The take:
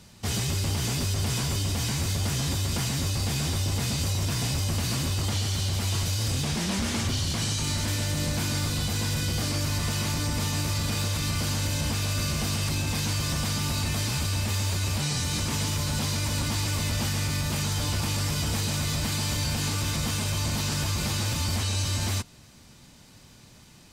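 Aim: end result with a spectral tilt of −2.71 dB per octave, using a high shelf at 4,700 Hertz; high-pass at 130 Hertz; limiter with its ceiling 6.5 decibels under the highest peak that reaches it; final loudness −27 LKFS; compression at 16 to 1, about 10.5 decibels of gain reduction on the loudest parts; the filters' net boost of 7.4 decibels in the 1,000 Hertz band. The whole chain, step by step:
high-pass filter 130 Hz
parametric band 1,000 Hz +8.5 dB
high-shelf EQ 4,700 Hz +8 dB
downward compressor 16 to 1, threshold −33 dBFS
level +9.5 dB
brickwall limiter −19.5 dBFS

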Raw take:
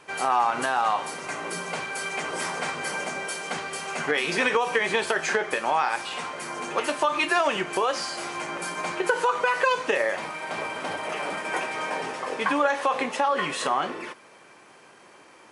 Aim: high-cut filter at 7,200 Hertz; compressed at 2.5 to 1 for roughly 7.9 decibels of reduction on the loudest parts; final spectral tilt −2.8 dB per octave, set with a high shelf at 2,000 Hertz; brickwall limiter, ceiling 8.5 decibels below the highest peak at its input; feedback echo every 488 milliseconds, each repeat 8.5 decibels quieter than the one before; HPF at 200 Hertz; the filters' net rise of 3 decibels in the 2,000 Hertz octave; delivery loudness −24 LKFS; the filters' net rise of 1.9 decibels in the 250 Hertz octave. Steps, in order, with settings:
high-pass filter 200 Hz
low-pass filter 7,200 Hz
parametric band 250 Hz +4 dB
high-shelf EQ 2,000 Hz −5.5 dB
parametric band 2,000 Hz +7 dB
downward compressor 2.5 to 1, threshold −29 dBFS
brickwall limiter −22 dBFS
repeating echo 488 ms, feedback 38%, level −8.5 dB
level +7 dB

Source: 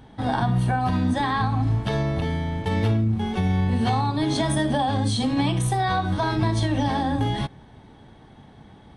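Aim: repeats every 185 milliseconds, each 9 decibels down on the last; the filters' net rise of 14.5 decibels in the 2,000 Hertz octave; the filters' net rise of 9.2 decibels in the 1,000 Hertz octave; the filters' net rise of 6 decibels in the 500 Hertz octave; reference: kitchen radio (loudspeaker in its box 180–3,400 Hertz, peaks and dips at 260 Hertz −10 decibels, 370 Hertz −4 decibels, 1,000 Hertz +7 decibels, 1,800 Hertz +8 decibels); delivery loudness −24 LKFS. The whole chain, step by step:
loudspeaker in its box 180–3,400 Hz, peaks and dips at 260 Hz −10 dB, 370 Hz −4 dB, 1,000 Hz +7 dB, 1,800 Hz +8 dB
parametric band 500 Hz +7 dB
parametric band 1,000 Hz +3.5 dB
parametric band 2,000 Hz +9 dB
repeating echo 185 ms, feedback 35%, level −9 dB
level −6 dB

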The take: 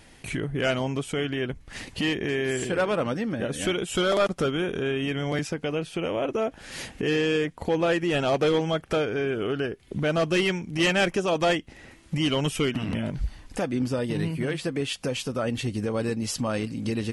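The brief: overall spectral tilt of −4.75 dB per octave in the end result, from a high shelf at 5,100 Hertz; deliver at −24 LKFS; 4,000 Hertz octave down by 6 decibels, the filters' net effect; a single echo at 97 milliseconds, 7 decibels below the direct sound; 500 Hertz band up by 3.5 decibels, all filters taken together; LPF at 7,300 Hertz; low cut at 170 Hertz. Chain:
high-pass filter 170 Hz
low-pass filter 7,300 Hz
parametric band 500 Hz +4.5 dB
parametric band 4,000 Hz −5.5 dB
high-shelf EQ 5,100 Hz −8 dB
single-tap delay 97 ms −7 dB
level +0.5 dB

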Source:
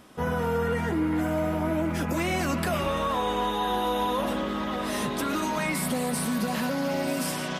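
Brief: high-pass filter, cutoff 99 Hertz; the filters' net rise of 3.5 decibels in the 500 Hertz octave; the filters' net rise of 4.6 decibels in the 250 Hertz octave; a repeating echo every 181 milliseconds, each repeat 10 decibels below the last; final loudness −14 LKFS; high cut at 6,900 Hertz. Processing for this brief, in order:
high-pass filter 99 Hz
low-pass filter 6,900 Hz
parametric band 250 Hz +5 dB
parametric band 500 Hz +3 dB
repeating echo 181 ms, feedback 32%, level −10 dB
level +10.5 dB

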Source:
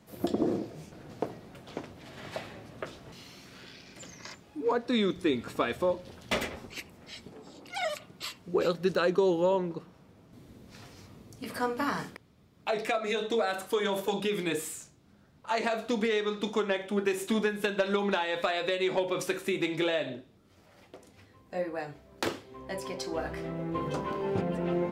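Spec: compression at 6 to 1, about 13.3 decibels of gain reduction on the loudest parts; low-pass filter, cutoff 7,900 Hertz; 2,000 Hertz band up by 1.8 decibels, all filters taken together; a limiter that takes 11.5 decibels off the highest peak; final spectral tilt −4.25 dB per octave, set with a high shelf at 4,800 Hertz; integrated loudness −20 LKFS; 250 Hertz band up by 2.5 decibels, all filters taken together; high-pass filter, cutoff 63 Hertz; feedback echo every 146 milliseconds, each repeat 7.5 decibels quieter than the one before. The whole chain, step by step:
high-pass filter 63 Hz
low-pass filter 7,900 Hz
parametric band 250 Hz +3.5 dB
parametric band 2,000 Hz +3.5 dB
high-shelf EQ 4,800 Hz −7.5 dB
downward compressor 6 to 1, threshold −36 dBFS
brickwall limiter −31 dBFS
repeating echo 146 ms, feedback 42%, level −7.5 dB
level +21.5 dB

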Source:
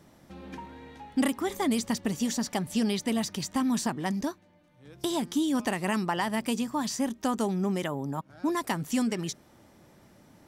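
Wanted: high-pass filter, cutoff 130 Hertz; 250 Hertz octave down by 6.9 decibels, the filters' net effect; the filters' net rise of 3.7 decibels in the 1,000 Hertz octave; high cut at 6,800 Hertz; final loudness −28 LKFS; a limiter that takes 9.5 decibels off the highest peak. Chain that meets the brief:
high-pass filter 130 Hz
low-pass filter 6,800 Hz
parametric band 250 Hz −8 dB
parametric band 1,000 Hz +5 dB
level +6.5 dB
brickwall limiter −16 dBFS

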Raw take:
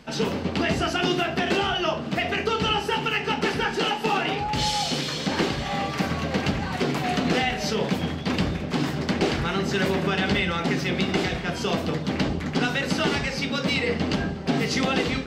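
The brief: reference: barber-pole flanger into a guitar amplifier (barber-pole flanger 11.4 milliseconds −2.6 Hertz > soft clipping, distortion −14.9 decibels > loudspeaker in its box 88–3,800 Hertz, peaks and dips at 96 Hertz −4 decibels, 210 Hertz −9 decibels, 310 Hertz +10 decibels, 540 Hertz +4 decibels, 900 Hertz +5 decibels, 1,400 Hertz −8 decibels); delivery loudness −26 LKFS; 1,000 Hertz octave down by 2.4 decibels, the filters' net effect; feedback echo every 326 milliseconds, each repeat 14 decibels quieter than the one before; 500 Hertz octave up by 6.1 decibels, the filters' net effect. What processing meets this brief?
parametric band 500 Hz +6 dB
parametric band 1,000 Hz −9 dB
repeating echo 326 ms, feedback 20%, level −14 dB
barber-pole flanger 11.4 ms −2.6 Hz
soft clipping −22 dBFS
loudspeaker in its box 88–3,800 Hz, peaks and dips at 96 Hz −4 dB, 210 Hz −9 dB, 310 Hz +10 dB, 540 Hz +4 dB, 900 Hz +5 dB, 1,400 Hz −8 dB
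level +2 dB

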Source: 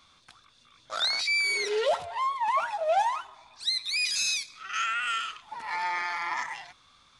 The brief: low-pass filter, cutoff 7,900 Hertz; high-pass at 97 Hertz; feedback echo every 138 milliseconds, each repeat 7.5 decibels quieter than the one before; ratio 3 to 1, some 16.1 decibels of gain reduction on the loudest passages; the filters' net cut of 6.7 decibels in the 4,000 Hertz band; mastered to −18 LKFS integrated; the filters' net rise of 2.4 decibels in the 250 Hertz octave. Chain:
high-pass filter 97 Hz
low-pass filter 7,900 Hz
parametric band 250 Hz +4.5 dB
parametric band 4,000 Hz −7.5 dB
downward compressor 3 to 1, threshold −44 dBFS
repeating echo 138 ms, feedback 42%, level −7.5 dB
level +23.5 dB

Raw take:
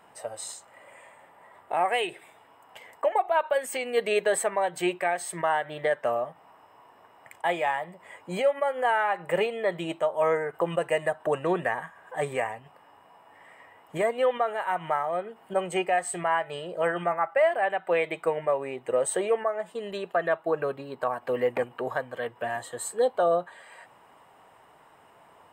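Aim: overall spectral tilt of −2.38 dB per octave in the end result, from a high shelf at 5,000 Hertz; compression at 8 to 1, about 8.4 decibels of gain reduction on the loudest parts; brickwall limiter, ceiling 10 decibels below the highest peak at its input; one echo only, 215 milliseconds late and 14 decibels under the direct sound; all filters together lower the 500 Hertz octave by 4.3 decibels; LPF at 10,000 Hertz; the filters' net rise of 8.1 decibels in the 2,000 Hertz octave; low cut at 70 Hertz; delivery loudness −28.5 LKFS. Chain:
high-pass filter 70 Hz
low-pass filter 10,000 Hz
parametric band 500 Hz −6 dB
parametric band 2,000 Hz +9 dB
high-shelf EQ 5,000 Hz +8.5 dB
downward compressor 8 to 1, threshold −26 dBFS
brickwall limiter −24 dBFS
single-tap delay 215 ms −14 dB
level +6 dB

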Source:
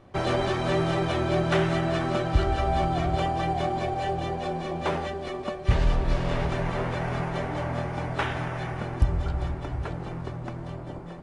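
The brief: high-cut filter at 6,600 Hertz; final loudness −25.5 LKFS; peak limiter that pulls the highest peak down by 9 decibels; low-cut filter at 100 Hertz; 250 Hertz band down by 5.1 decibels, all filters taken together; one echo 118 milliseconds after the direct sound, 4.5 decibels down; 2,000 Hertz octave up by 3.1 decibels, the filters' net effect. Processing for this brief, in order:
high-pass filter 100 Hz
low-pass filter 6,600 Hz
parametric band 250 Hz −9 dB
parametric band 2,000 Hz +4 dB
brickwall limiter −20 dBFS
single-tap delay 118 ms −4.5 dB
level +5 dB

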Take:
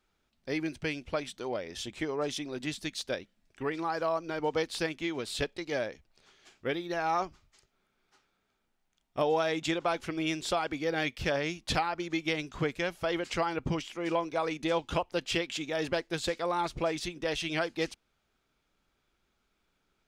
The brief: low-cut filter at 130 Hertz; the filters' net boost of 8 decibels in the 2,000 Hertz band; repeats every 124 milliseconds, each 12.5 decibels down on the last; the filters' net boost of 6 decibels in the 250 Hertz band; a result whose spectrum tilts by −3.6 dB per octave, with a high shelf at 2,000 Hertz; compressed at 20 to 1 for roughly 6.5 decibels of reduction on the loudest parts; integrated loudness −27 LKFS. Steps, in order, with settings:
high-pass filter 130 Hz
parametric band 250 Hz +9 dB
high-shelf EQ 2,000 Hz +4.5 dB
parametric band 2,000 Hz +7 dB
downward compressor 20 to 1, threshold −26 dBFS
repeating echo 124 ms, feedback 24%, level −12.5 dB
level +4.5 dB

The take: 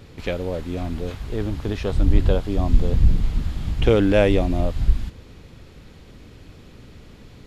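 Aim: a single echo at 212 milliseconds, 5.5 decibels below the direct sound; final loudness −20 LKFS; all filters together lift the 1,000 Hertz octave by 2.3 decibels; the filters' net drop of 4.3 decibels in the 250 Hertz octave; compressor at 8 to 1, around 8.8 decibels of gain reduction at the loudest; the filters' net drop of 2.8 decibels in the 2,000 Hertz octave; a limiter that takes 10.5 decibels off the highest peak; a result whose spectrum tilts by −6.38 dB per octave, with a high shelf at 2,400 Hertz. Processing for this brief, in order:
parametric band 250 Hz −6 dB
parametric band 1,000 Hz +5 dB
parametric band 2,000 Hz −8.5 dB
high-shelf EQ 2,400 Hz +5.5 dB
downward compressor 8 to 1, threshold −18 dBFS
brickwall limiter −19.5 dBFS
single-tap delay 212 ms −5.5 dB
level +10 dB

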